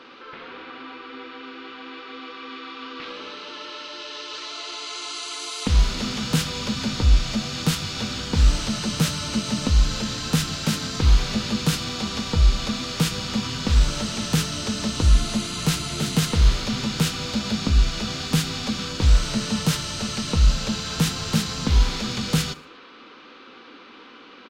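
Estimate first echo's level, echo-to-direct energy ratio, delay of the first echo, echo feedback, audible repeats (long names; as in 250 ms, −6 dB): −22.0 dB, −21.0 dB, 77 ms, 46%, 2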